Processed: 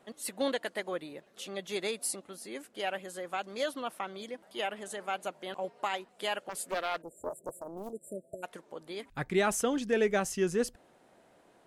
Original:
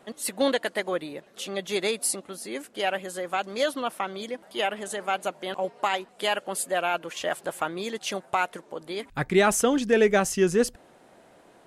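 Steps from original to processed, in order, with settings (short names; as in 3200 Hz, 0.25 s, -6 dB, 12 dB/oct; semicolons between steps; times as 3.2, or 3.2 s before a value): 7.02–8.43 spectral delete 670–7200 Hz; 6.49–7.93 Doppler distortion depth 0.61 ms; gain -7.5 dB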